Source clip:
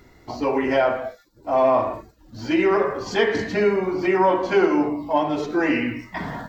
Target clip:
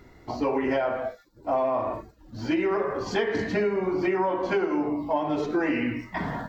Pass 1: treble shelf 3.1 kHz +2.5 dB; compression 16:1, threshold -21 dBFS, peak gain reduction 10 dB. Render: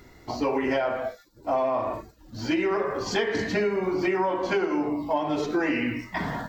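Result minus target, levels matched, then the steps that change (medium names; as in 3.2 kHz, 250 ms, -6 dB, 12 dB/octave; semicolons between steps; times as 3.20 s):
8 kHz band +6.5 dB
change: treble shelf 3.1 kHz -6 dB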